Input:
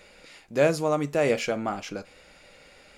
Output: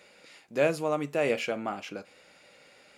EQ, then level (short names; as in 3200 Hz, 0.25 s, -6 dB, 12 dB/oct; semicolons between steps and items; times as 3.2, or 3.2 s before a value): Bessel high-pass 160 Hz, order 2; dynamic EQ 5900 Hz, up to -5 dB, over -52 dBFS, Q 1.5; dynamic EQ 2700 Hz, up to +5 dB, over -50 dBFS, Q 3.6; -3.5 dB